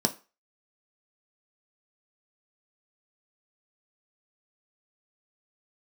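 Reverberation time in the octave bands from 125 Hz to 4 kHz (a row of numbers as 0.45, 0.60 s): 0.25, 0.30, 0.30, 0.35, 0.30, 0.30 s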